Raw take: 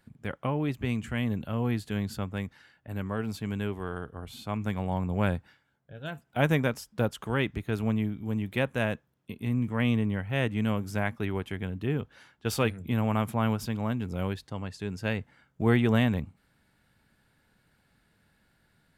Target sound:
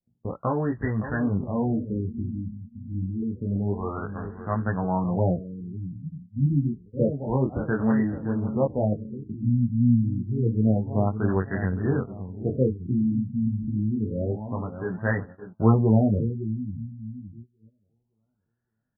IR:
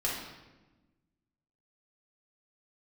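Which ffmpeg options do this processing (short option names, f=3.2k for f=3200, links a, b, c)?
-filter_complex "[0:a]flanger=delay=17:depth=6.2:speed=0.2,asplit=2[a][b];[b]adelay=565,lowpass=f=1.1k:p=1,volume=-10dB,asplit=2[c][d];[d]adelay=565,lowpass=f=1.1k:p=1,volume=0.43,asplit=2[e][f];[f]adelay=565,lowpass=f=1.1k:p=1,volume=0.43,asplit=2[g][h];[h]adelay=565,lowpass=f=1.1k:p=1,volume=0.43,asplit=2[i][j];[j]adelay=565,lowpass=f=1.1k:p=1,volume=0.43[k];[a][c][e][g][i][k]amix=inputs=6:normalize=0,agate=range=-23dB:threshold=-47dB:ratio=16:detection=peak,adynamicequalizer=threshold=0.00398:dfrequency=2000:dqfactor=0.77:tfrequency=2000:tqfactor=0.77:attack=5:release=100:ratio=0.375:range=2.5:mode=boostabove:tftype=bell,afftfilt=real='re*lt(b*sr/1024,280*pow(2000/280,0.5+0.5*sin(2*PI*0.28*pts/sr)))':imag='im*lt(b*sr/1024,280*pow(2000/280,0.5+0.5*sin(2*PI*0.28*pts/sr)))':win_size=1024:overlap=0.75,volume=7.5dB"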